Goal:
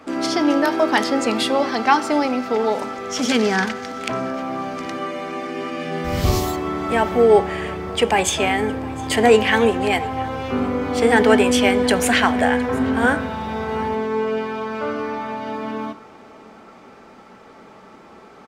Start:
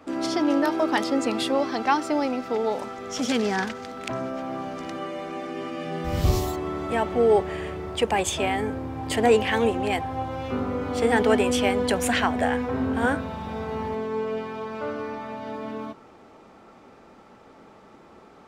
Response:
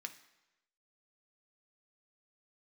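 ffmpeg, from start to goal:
-filter_complex "[0:a]aecho=1:1:712:0.0794,asplit=2[s0][s1];[1:a]atrim=start_sample=2205,asetrate=38367,aresample=44100[s2];[s1][s2]afir=irnorm=-1:irlink=0,volume=1.19[s3];[s0][s3]amix=inputs=2:normalize=0,volume=1.19"

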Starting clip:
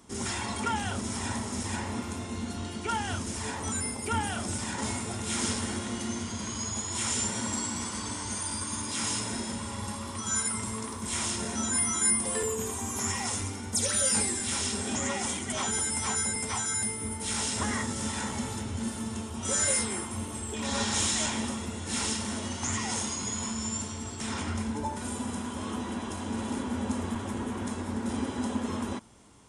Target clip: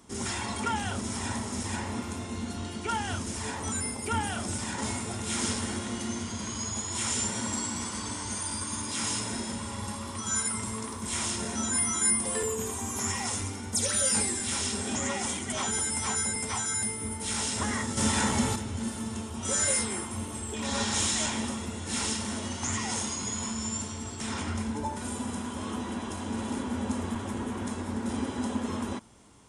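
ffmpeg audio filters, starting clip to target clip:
-filter_complex "[0:a]asettb=1/sr,asplit=3[s0][s1][s2];[s0]atrim=end=17.974[s3];[s1]atrim=start=17.97:end=18.56,asetpts=PTS-STARTPTS,afade=t=in:d=0.004:c=qsin,afade=t=out:st=0.586:d=0.004:c=qsin,acontrast=75[s4];[s2]atrim=start=18.556[s5];[s3][s4]acrossfade=d=0.004:c1=hsin:c2=qsin[s6];[s6][s5]acrossfade=d=0.004:c1=qsin:c2=hsin"

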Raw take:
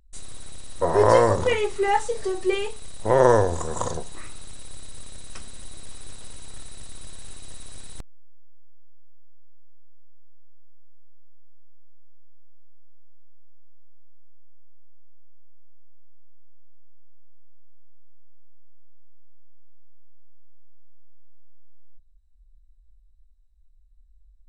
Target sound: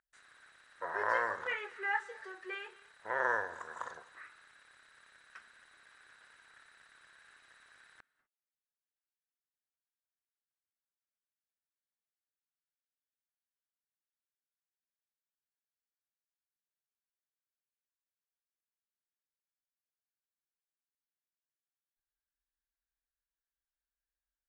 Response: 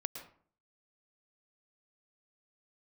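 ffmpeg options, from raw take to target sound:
-filter_complex "[0:a]bandpass=f=1600:t=q:w=5.1:csg=0,asplit=2[s0][s1];[1:a]atrim=start_sample=2205,afade=t=out:st=0.19:d=0.01,atrim=end_sample=8820,asetrate=24255,aresample=44100[s2];[s1][s2]afir=irnorm=-1:irlink=0,volume=0.178[s3];[s0][s3]amix=inputs=2:normalize=0"

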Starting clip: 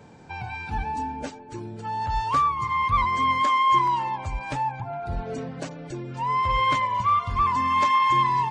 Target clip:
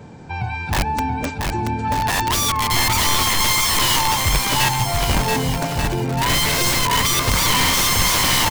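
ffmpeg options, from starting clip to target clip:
-af "aeval=exprs='(mod(11.9*val(0)+1,2)-1)/11.9':c=same,lowshelf=f=260:g=6.5,aecho=1:1:680|1190|1572|1859|2075:0.631|0.398|0.251|0.158|0.1,volume=2"

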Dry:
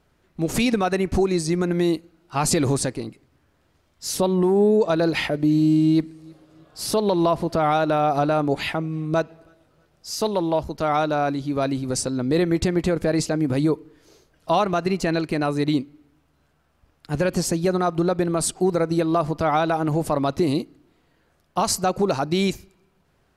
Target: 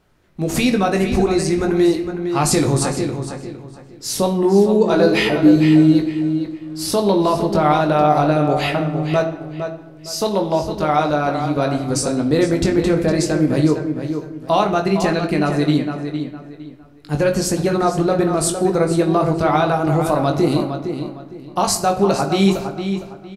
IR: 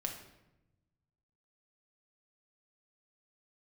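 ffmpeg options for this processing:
-filter_complex "[0:a]asettb=1/sr,asplit=3[s0][s1][s2];[s0]atrim=end=4.844[s3];[s1]atrim=start=4.84:end=5.56,asetpts=PTS-STARTPTS,afade=t=in:d=0.004:c=qsin,afade=t=out:st=0.716:d=0.004:c=qsin,asplit=2[s4][s5];[s5]adelay=16,volume=0.75[s6];[s4][s6]amix=inputs=2:normalize=0,atrim=end_sample=31752[s7];[s2]atrim=start=5.556[s8];[s3][s7]acrossfade=d=0.004:c1=hsin:c2=qsin[s9];[s9][s8]acrossfade=d=0.004:c1=qsin:c2=hsin,asplit=2[s10][s11];[s11]adelay=459,lowpass=f=4200:p=1,volume=0.398,asplit=2[s12][s13];[s13]adelay=459,lowpass=f=4200:p=1,volume=0.28,asplit=2[s14][s15];[s15]adelay=459,lowpass=f=4200:p=1,volume=0.28[s16];[s10][s12][s14][s16]amix=inputs=4:normalize=0,asplit=2[s17][s18];[1:a]atrim=start_sample=2205,adelay=20[s19];[s18][s19]afir=irnorm=-1:irlink=0,volume=0.596[s20];[s17][s20]amix=inputs=2:normalize=0,volume=1.33"

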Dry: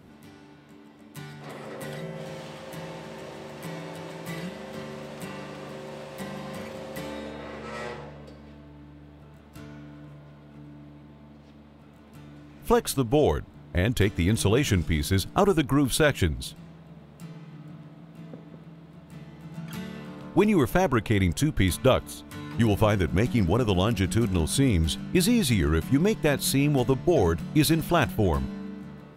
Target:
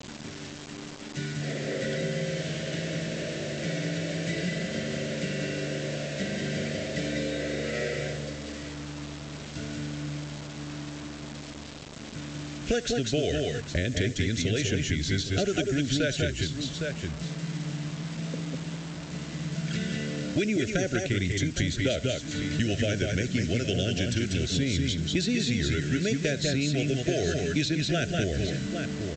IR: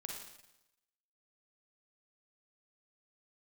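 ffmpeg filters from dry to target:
-filter_complex "[0:a]asuperstop=centerf=990:order=12:qfactor=1.4,aecho=1:1:69|189|190|197|810:0.106|0.266|0.316|0.501|0.141,acrossover=split=330|3400[s0][s1][s2];[s2]acompressor=mode=upward:threshold=0.00251:ratio=2.5[s3];[s0][s1][s3]amix=inputs=3:normalize=0,highpass=44,aresample=16000,acrusher=bits=7:mix=0:aa=0.000001,aresample=44100,acrossover=split=1200|4900[s4][s5][s6];[s4]acompressor=threshold=0.02:ratio=4[s7];[s5]acompressor=threshold=0.00794:ratio=4[s8];[s6]acompressor=threshold=0.00631:ratio=4[s9];[s7][s8][s9]amix=inputs=3:normalize=0,volume=2.24"

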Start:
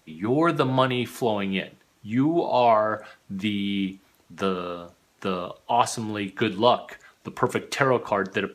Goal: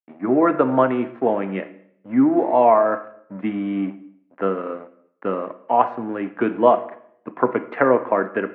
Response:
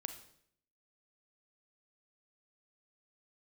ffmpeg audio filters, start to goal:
-filter_complex "[0:a]aeval=exprs='sgn(val(0))*max(abs(val(0))-0.00891,0)':c=same,highpass=f=140:w=0.5412,highpass=f=140:w=1.3066,equalizer=f=160:t=q:w=4:g=-10,equalizer=f=270:t=q:w=4:g=6,equalizer=f=540:t=q:w=4:g=4,lowpass=f=2200:w=0.5412,lowpass=f=2200:w=1.3066,asplit=2[s0][s1];[1:a]atrim=start_sample=2205,lowpass=2200,lowshelf=f=110:g=-10.5[s2];[s1][s2]afir=irnorm=-1:irlink=0,volume=1.58[s3];[s0][s3]amix=inputs=2:normalize=0,volume=0.75"

